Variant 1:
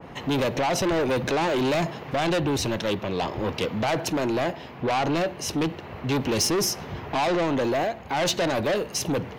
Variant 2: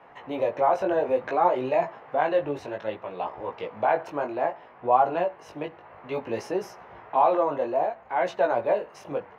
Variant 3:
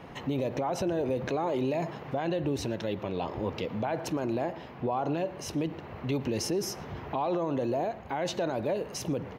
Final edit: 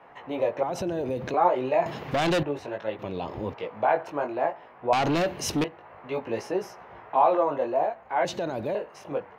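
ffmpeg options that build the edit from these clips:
-filter_complex "[2:a]asplit=3[s0][s1][s2];[0:a]asplit=2[s3][s4];[1:a]asplit=6[s5][s6][s7][s8][s9][s10];[s5]atrim=end=0.632[s11];[s0]atrim=start=0.628:end=1.342[s12];[s6]atrim=start=1.338:end=1.862[s13];[s3]atrim=start=1.858:end=2.432[s14];[s7]atrim=start=2.428:end=2.992[s15];[s1]atrim=start=2.988:end=3.542[s16];[s8]atrim=start=3.538:end=4.932[s17];[s4]atrim=start=4.928:end=5.642[s18];[s9]atrim=start=5.638:end=8.252[s19];[s2]atrim=start=8.248:end=8.752[s20];[s10]atrim=start=8.748[s21];[s11][s12]acrossfade=d=0.004:c1=hsin:c2=hsin[s22];[s22][s13]acrossfade=d=0.004:c1=hsin:c2=hsin[s23];[s23][s14]acrossfade=d=0.004:c1=hsin:c2=hsin[s24];[s24][s15]acrossfade=d=0.004:c1=hsin:c2=hsin[s25];[s25][s16]acrossfade=d=0.004:c1=hsin:c2=hsin[s26];[s26][s17]acrossfade=d=0.004:c1=hsin:c2=hsin[s27];[s27][s18]acrossfade=d=0.004:c1=hsin:c2=hsin[s28];[s28][s19]acrossfade=d=0.004:c1=hsin:c2=hsin[s29];[s29][s20]acrossfade=d=0.004:c1=hsin:c2=hsin[s30];[s30][s21]acrossfade=d=0.004:c1=hsin:c2=hsin"

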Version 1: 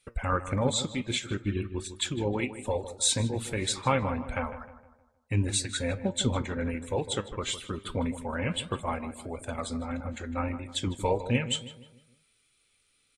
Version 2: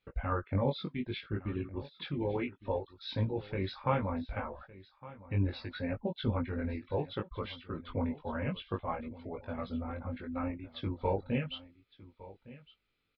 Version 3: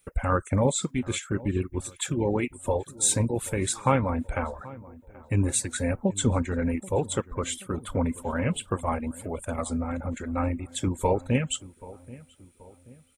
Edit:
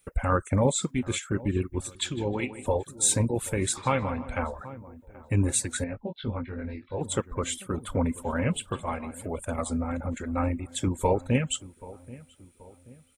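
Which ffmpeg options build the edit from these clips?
-filter_complex "[0:a]asplit=3[s0][s1][s2];[2:a]asplit=5[s3][s4][s5][s6][s7];[s3]atrim=end=1.952[s8];[s0]atrim=start=1.948:end=2.662[s9];[s4]atrim=start=2.658:end=3.772[s10];[s1]atrim=start=3.768:end=4.382[s11];[s5]atrim=start=4.378:end=5.842[s12];[1:a]atrim=start=5.838:end=7.012[s13];[s6]atrim=start=7.008:end=8.722[s14];[s2]atrim=start=8.718:end=9.142[s15];[s7]atrim=start=9.138[s16];[s8][s9]acrossfade=d=0.004:c1=hsin:c2=hsin[s17];[s17][s10]acrossfade=d=0.004:c1=hsin:c2=hsin[s18];[s18][s11]acrossfade=d=0.004:c1=hsin:c2=hsin[s19];[s19][s12]acrossfade=d=0.004:c1=hsin:c2=hsin[s20];[s20][s13]acrossfade=d=0.004:c1=hsin:c2=hsin[s21];[s21][s14]acrossfade=d=0.004:c1=hsin:c2=hsin[s22];[s22][s15]acrossfade=d=0.004:c1=hsin:c2=hsin[s23];[s23][s16]acrossfade=d=0.004:c1=hsin:c2=hsin"

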